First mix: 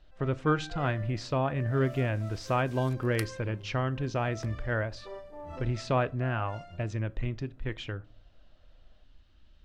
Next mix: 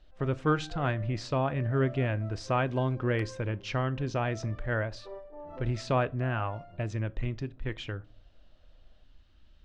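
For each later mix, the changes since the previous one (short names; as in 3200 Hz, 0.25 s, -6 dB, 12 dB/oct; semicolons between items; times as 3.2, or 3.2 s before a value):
first sound: add band-pass 460 Hz, Q 0.56; second sound: add band-pass 600 Hz, Q 1.1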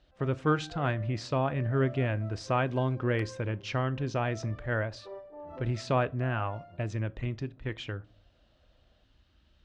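speech: add HPF 53 Hz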